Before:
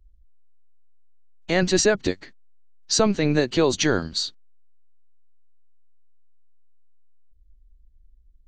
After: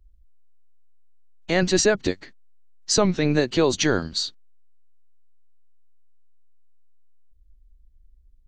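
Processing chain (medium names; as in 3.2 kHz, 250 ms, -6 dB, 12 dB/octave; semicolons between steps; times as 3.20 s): warped record 33 1/3 rpm, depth 160 cents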